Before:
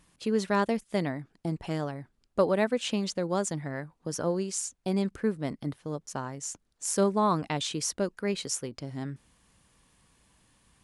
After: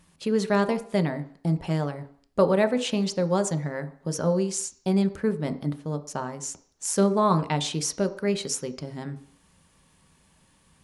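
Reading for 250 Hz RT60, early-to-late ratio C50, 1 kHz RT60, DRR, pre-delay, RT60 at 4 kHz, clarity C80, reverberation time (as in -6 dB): 0.50 s, 15.0 dB, 0.55 s, 8.0 dB, 3 ms, 0.60 s, 18.0 dB, 0.55 s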